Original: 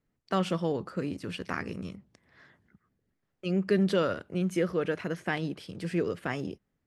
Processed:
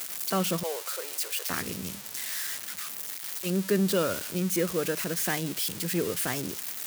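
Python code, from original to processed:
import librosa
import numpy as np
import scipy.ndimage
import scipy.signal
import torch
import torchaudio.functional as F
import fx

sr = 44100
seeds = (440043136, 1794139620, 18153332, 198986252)

y = x + 0.5 * 10.0 ** (-21.5 / 20.0) * np.diff(np.sign(x), prepend=np.sign(x[:1]))
y = fx.steep_highpass(y, sr, hz=460.0, slope=36, at=(0.63, 1.5))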